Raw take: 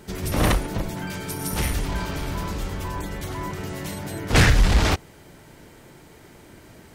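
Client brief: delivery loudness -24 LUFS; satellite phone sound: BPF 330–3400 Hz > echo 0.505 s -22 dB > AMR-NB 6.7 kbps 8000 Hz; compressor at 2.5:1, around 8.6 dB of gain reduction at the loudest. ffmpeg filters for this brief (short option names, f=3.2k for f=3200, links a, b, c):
-af "acompressor=threshold=-25dB:ratio=2.5,highpass=330,lowpass=3.4k,aecho=1:1:505:0.0794,volume=13.5dB" -ar 8000 -c:a libopencore_amrnb -b:a 6700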